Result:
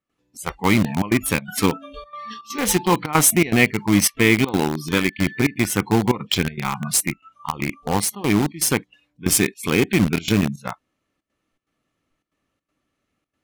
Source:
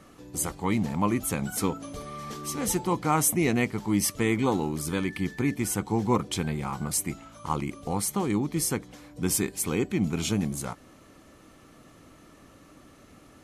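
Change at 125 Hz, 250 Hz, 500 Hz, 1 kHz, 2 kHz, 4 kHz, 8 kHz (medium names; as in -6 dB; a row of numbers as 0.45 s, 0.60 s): +6.5 dB, +7.0 dB, +7.0 dB, +5.5 dB, +12.5 dB, +11.5 dB, +7.0 dB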